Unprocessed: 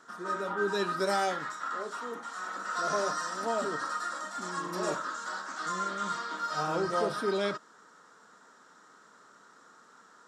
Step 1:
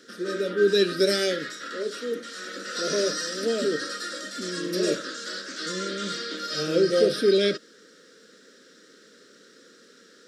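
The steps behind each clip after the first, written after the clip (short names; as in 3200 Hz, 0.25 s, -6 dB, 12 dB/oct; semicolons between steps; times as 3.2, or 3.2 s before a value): EQ curve 100 Hz 0 dB, 250 Hz +10 dB, 530 Hz +12 dB, 860 Hz -25 dB, 1600 Hz +4 dB, 2700 Hz +10 dB, 5000 Hz +14 dB, 7200 Hz +3 dB, 10000 Hz +10 dB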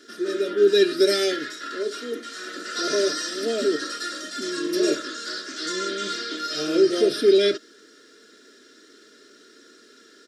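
comb 2.9 ms, depth 74%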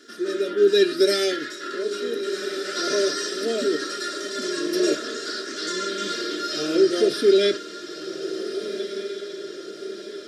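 diffused feedback echo 1.526 s, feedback 53%, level -10 dB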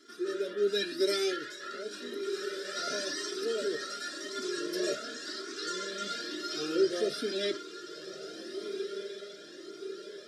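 cascading flanger rising 0.93 Hz; gain -4 dB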